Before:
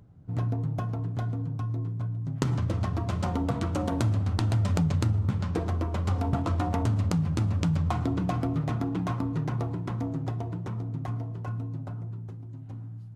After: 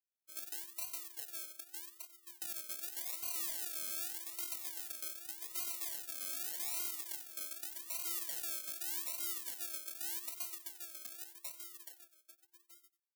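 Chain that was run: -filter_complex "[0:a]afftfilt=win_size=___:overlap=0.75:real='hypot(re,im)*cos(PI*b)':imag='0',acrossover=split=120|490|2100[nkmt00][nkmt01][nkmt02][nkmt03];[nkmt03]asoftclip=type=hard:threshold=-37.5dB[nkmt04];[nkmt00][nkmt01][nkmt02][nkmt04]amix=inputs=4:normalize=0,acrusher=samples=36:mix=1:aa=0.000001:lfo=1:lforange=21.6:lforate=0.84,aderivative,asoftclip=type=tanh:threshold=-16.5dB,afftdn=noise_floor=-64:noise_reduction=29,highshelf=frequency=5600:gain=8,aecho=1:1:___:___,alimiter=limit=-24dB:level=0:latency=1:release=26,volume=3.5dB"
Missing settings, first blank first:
512, 92, 0.126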